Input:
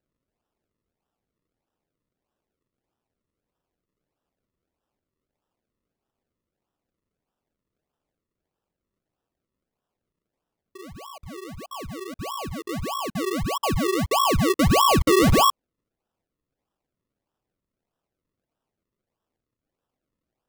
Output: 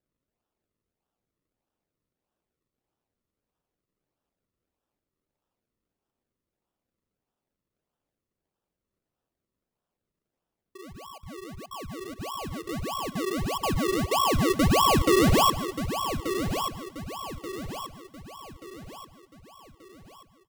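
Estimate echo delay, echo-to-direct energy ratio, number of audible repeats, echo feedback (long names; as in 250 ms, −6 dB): 152 ms, −7.5 dB, 8, repeats not evenly spaced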